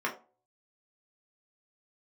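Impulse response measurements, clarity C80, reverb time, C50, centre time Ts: 17.0 dB, 0.40 s, 12.0 dB, 16 ms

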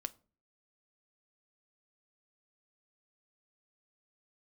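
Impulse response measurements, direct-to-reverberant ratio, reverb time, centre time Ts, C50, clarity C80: 11.5 dB, 0.40 s, 3 ms, 22.0 dB, 27.5 dB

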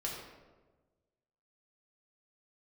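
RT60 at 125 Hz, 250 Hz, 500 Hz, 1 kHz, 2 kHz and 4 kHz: 1.7, 1.5, 1.4, 1.1, 0.90, 0.70 s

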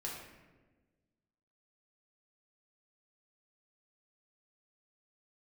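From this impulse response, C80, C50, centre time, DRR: 4.5 dB, 2.0 dB, 59 ms, -4.0 dB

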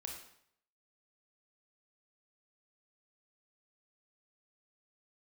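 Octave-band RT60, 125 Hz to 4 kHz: 0.70, 0.65, 0.65, 0.65, 0.65, 0.60 s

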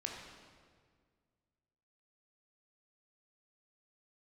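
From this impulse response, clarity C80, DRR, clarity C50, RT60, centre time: 3.5 dB, -0.5 dB, 2.0 dB, 1.8 s, 68 ms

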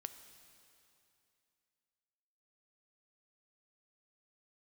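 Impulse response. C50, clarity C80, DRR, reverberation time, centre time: 10.0 dB, 11.0 dB, 9.0 dB, 2.7 s, 23 ms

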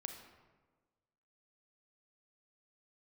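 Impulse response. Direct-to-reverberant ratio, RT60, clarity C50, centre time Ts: 4.5 dB, 1.4 s, 6.0 dB, 31 ms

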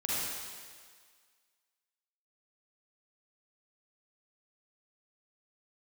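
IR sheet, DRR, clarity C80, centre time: -8.0 dB, -2.5 dB, 0.146 s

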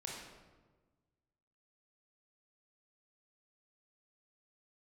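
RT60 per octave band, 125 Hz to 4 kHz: 1.9, 1.7, 1.5, 1.2, 1.0, 0.80 s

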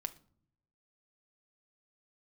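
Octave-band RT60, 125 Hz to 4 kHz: 1.1, 0.90, 0.65, 0.50, 0.35, 0.35 s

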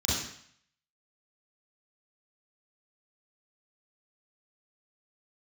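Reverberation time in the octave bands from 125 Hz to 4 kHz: 0.65, 0.60, 0.55, 0.65, 0.70, 0.65 s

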